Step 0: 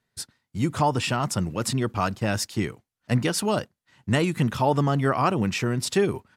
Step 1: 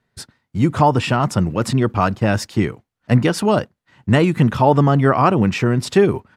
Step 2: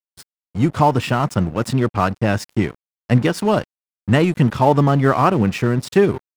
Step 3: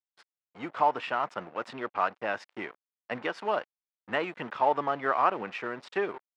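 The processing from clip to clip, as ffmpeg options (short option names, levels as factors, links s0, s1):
-af "highshelf=f=3600:g=-12,volume=2.66"
-af "aeval=exprs='sgn(val(0))*max(abs(val(0))-0.0237,0)':c=same"
-af "highpass=650,lowpass=2600,volume=0.473"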